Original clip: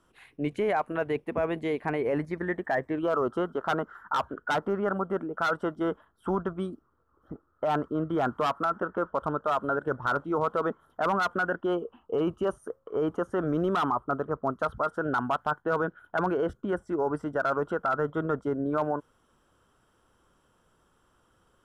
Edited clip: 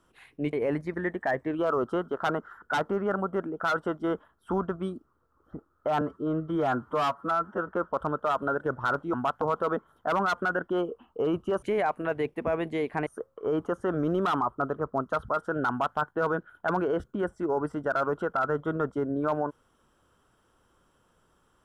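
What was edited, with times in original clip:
0.53–1.97 s: move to 12.56 s
4.06–4.39 s: delete
7.78–8.89 s: stretch 1.5×
15.19–15.47 s: copy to 10.35 s

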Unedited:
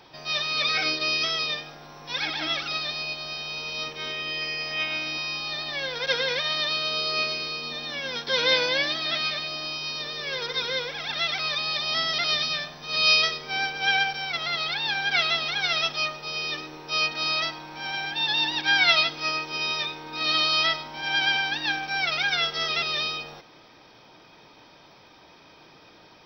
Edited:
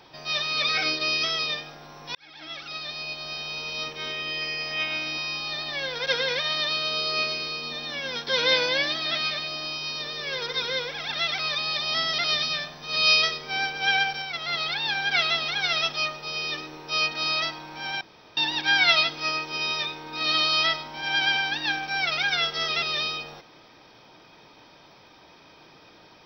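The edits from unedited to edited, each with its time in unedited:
2.15–3.36 s: fade in
14.22–14.48 s: gain -3 dB
18.01–18.37 s: room tone

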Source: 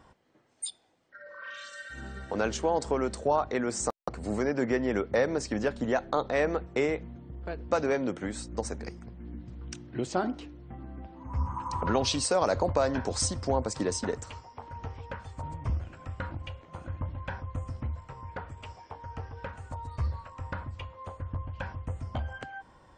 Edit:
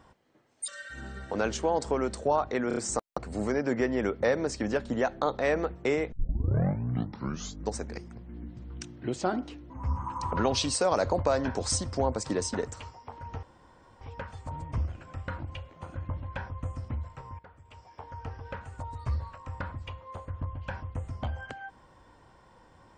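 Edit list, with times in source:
0.68–1.68 s: delete
3.68 s: stutter 0.03 s, 4 plays
7.03 s: tape start 1.65 s
10.61–11.20 s: delete
14.93 s: insert room tone 0.58 s
18.31–18.98 s: fade in quadratic, from -14.5 dB

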